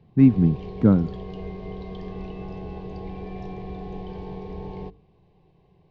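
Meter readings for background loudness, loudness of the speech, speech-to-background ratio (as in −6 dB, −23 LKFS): −36.5 LKFS, −20.0 LKFS, 16.5 dB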